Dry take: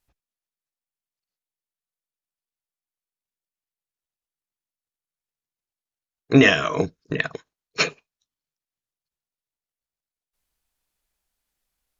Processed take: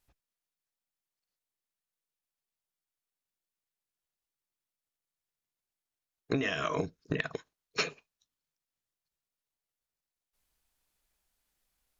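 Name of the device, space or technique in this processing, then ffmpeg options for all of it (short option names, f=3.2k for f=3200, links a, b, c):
serial compression, leveller first: -af "acompressor=threshold=-18dB:ratio=2.5,acompressor=threshold=-28dB:ratio=6"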